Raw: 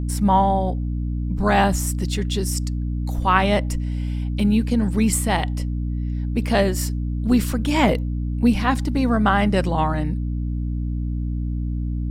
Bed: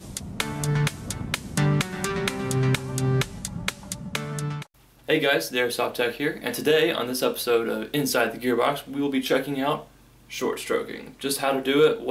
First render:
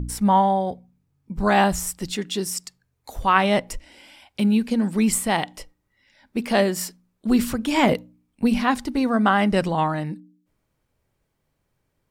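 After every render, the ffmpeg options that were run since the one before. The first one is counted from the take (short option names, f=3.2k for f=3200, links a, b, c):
-af "bandreject=f=60:t=h:w=4,bandreject=f=120:t=h:w=4,bandreject=f=180:t=h:w=4,bandreject=f=240:t=h:w=4,bandreject=f=300:t=h:w=4"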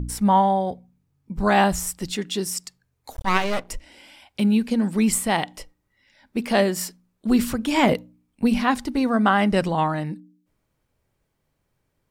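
-filter_complex "[0:a]asettb=1/sr,asplit=3[a][b][c];[a]atrim=end=3.124[d];[b]atrim=start=3.12:end=3.69,asetpts=PTS-STARTPTS,afade=t=in:d=0.004:c=qsin,afade=t=out:st=0.566:d=0.004:c=qsin,aeval=exprs='max(val(0),0)':c=same[e];[c]atrim=start=3.686[f];[d][e]acrossfade=d=0.004:c1=hsin:c2=qsin[g];[g][f]acrossfade=d=0.004:c1=qsin:c2=hsin"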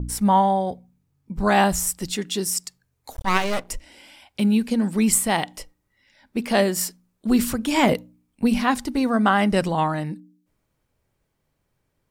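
-af "adynamicequalizer=threshold=0.0112:dfrequency=5400:dqfactor=0.7:tfrequency=5400:tqfactor=0.7:attack=5:release=100:ratio=0.375:range=2.5:mode=boostabove:tftype=highshelf"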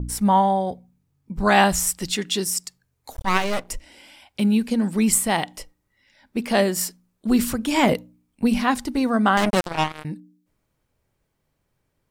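-filter_complex "[0:a]asettb=1/sr,asplit=3[a][b][c];[a]atrim=end=1.454[d];[b]atrim=start=1.45:end=2.44,asetpts=PTS-STARTPTS,afade=t=in:d=0.004:c=qsin,afade=t=out:st=0.986:d=0.004:c=qsin,equalizer=f=2.8k:t=o:w=2.8:g=4.5[e];[c]atrim=start=2.436[f];[d][e]acrossfade=d=0.004:c1=hsin:c2=qsin[g];[g][f]acrossfade=d=0.004:c1=qsin:c2=hsin,asettb=1/sr,asplit=3[h][i][j];[h]atrim=end=9.374[k];[i]atrim=start=9.37:end=10.05,asetpts=PTS-STARTPTS,afade=t=in:d=0.004:c=qsin,afade=t=out:st=0.676:d=0.004:c=qsin,acrusher=bits=2:mix=0:aa=0.5[l];[j]atrim=start=10.046[m];[k][l]acrossfade=d=0.004:c1=hsin:c2=qsin[n];[n][m]acrossfade=d=0.004:c1=qsin:c2=hsin"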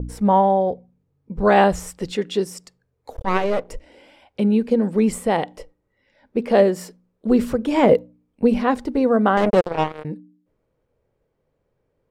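-af "lowpass=f=1.6k:p=1,equalizer=f=480:w=2.2:g=12"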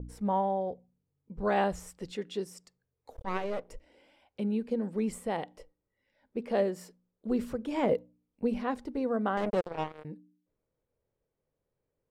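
-af "volume=-13dB"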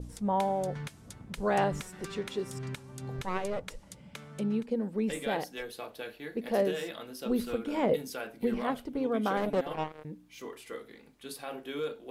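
-filter_complex "[1:a]volume=-16.5dB[a];[0:a][a]amix=inputs=2:normalize=0"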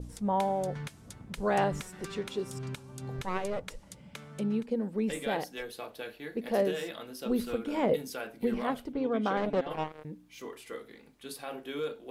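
-filter_complex "[0:a]asettb=1/sr,asplit=3[a][b][c];[a]atrim=end=2.244[d];[b]atrim=start=2.24:end=3.02,asetpts=PTS-STARTPTS,afade=t=in:d=0.004:c=qsin,afade=t=out:st=0.776:d=0.004:c=qsin,equalizer=f=1.9k:t=o:w=0.26:g=-7[e];[c]atrim=start=3.016[f];[d][e]acrossfade=d=0.004:c1=hsin:c2=qsin[g];[g][f]acrossfade=d=0.004:c1=qsin:c2=hsin,asplit=3[h][i][j];[h]afade=t=out:st=8.92:d=0.02[k];[i]lowpass=5.7k,afade=t=in:st=8.92:d=0.02,afade=t=out:st=9.69:d=0.02[l];[j]afade=t=in:st=9.69:d=0.02[m];[k][l][m]amix=inputs=3:normalize=0"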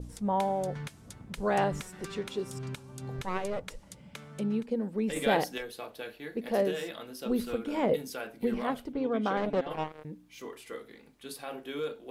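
-filter_complex "[0:a]asettb=1/sr,asplit=3[a][b][c];[a]atrim=end=5.164[d];[b]atrim=start=5.16:end=5.58,asetpts=PTS-STARTPTS,afade=t=in:d=0.004:c=qsin,afade=t=out:st=0.416:d=0.004:c=qsin,acontrast=52[e];[c]atrim=start=5.576[f];[d][e]acrossfade=d=0.004:c1=hsin:c2=qsin[g];[g][f]acrossfade=d=0.004:c1=qsin:c2=hsin"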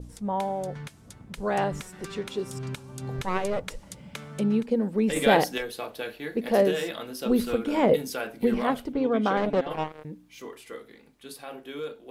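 -af "dynaudnorm=f=250:g=21:m=6.5dB"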